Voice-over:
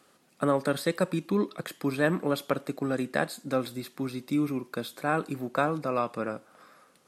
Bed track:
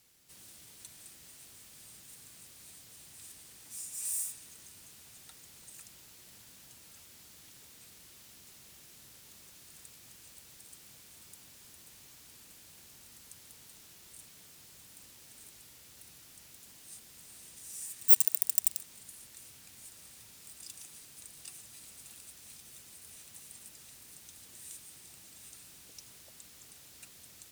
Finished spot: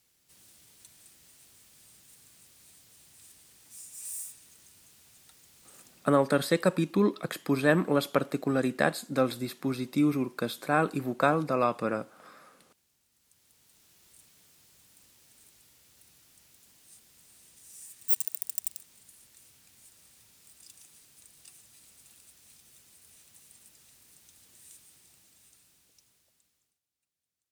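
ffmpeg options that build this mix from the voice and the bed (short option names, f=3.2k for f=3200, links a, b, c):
-filter_complex "[0:a]adelay=5650,volume=2dB[a];[1:a]volume=8.5dB,afade=t=out:st=5.87:d=0.35:silence=0.199526,afade=t=in:st=13.12:d=0.93:silence=0.237137,afade=t=out:st=24.8:d=2:silence=0.0334965[b];[a][b]amix=inputs=2:normalize=0"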